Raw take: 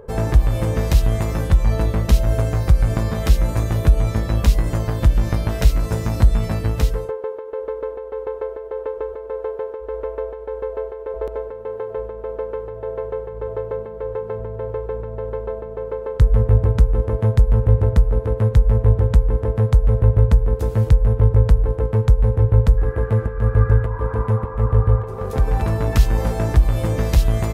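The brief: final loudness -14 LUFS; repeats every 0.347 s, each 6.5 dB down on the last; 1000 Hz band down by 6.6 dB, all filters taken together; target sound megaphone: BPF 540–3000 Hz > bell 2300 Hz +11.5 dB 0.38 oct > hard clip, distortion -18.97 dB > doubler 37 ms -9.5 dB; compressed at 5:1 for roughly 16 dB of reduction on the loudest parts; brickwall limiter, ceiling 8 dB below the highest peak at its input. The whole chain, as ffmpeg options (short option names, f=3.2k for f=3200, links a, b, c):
-filter_complex "[0:a]equalizer=f=1k:t=o:g=-8,acompressor=threshold=-26dB:ratio=5,alimiter=limit=-22dB:level=0:latency=1,highpass=540,lowpass=3k,equalizer=f=2.3k:t=o:w=0.38:g=11.5,aecho=1:1:347|694|1041|1388|1735|2082:0.473|0.222|0.105|0.0491|0.0231|0.0109,asoftclip=type=hard:threshold=-30.5dB,asplit=2[a][b];[b]adelay=37,volume=-9.5dB[c];[a][c]amix=inputs=2:normalize=0,volume=25.5dB"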